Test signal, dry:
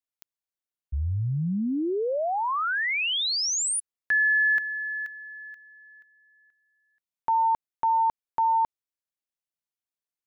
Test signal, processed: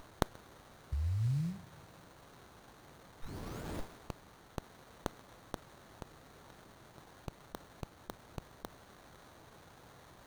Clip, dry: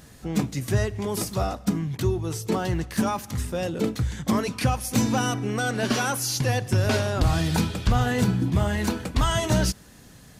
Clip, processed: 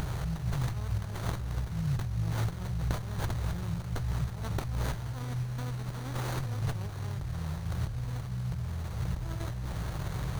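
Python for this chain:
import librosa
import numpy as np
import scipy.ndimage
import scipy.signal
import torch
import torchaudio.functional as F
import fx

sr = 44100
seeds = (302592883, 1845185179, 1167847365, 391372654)

p1 = fx.bin_compress(x, sr, power=0.4)
p2 = fx.high_shelf(p1, sr, hz=9600.0, db=7.0)
p3 = fx.over_compress(p2, sr, threshold_db=-22.0, ratio=-1.0)
p4 = fx.brickwall_bandstop(p3, sr, low_hz=180.0, high_hz=3700.0)
p5 = p4 + fx.echo_single(p4, sr, ms=132, db=-24.0, dry=0)
p6 = fx.rev_double_slope(p5, sr, seeds[0], early_s=0.25, late_s=2.9, knee_db=-19, drr_db=11.0)
p7 = fx.running_max(p6, sr, window=17)
y = p7 * librosa.db_to_amplitude(-8.5)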